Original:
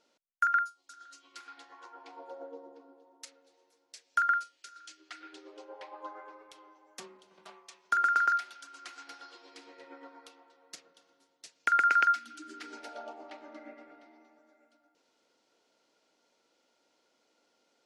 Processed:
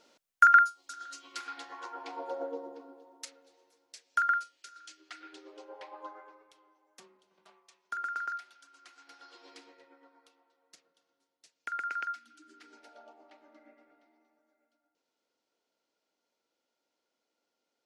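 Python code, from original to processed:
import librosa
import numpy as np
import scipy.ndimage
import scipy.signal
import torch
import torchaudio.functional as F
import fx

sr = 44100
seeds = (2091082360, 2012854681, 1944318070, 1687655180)

y = fx.gain(x, sr, db=fx.line((2.42, 8.0), (4.06, -0.5), (6.0, -0.5), (6.59, -9.5), (8.99, -9.5), (9.5, 1.0), (9.94, -11.0)))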